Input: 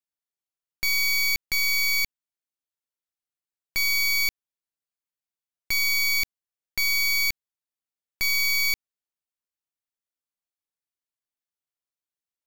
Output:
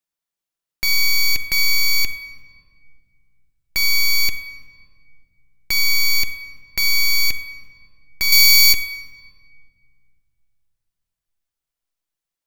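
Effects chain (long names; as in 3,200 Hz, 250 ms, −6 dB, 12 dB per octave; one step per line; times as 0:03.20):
0:08.32–0:08.73: high-shelf EQ 2,300 Hz +9.5 dB
rectangular room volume 3,100 cubic metres, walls mixed, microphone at 0.73 metres
level +5.5 dB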